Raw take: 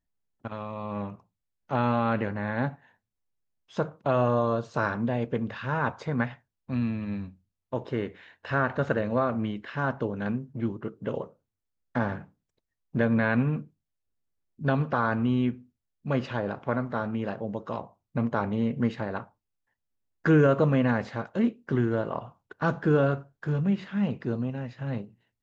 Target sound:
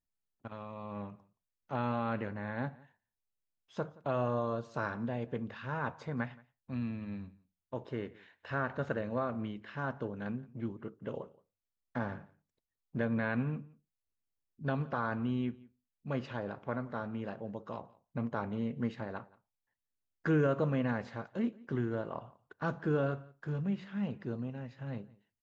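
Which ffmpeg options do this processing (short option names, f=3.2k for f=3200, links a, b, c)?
-af "aecho=1:1:173:0.0668,volume=-8.5dB"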